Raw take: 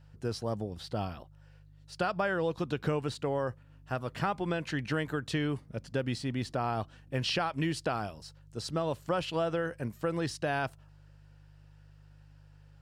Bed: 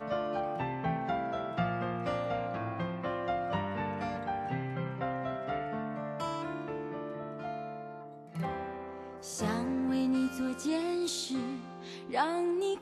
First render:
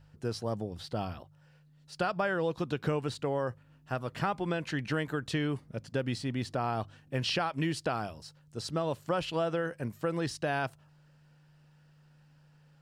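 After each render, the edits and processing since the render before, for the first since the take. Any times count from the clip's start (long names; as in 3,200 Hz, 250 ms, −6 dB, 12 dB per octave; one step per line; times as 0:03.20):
hum removal 50 Hz, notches 2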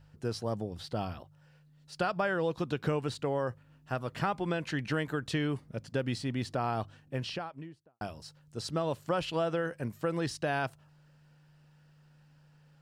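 0:06.79–0:08.01: fade out and dull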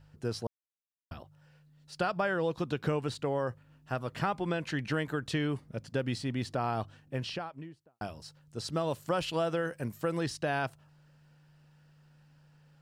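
0:00.47–0:01.11: silence
0:08.72–0:10.23: high-shelf EQ 6,500 Hz +8 dB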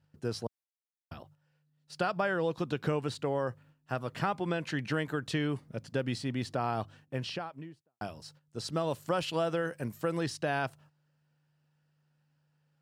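noise gate −56 dBFS, range −12 dB
high-pass filter 86 Hz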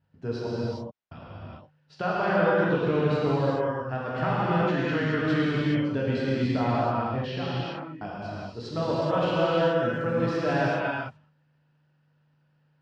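high-frequency loss of the air 210 metres
reverb whose tail is shaped and stops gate 450 ms flat, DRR −8 dB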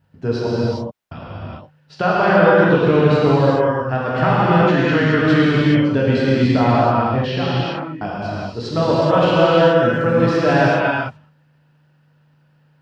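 level +10.5 dB
brickwall limiter −1 dBFS, peak gain reduction 1 dB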